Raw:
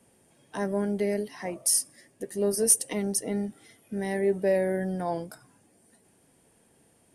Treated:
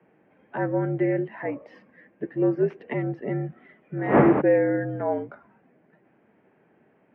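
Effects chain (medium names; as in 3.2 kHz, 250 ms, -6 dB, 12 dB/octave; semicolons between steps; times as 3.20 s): 3.98–4.40 s: wind noise 550 Hz -27 dBFS; mistuned SSB -58 Hz 230–2400 Hz; trim +5 dB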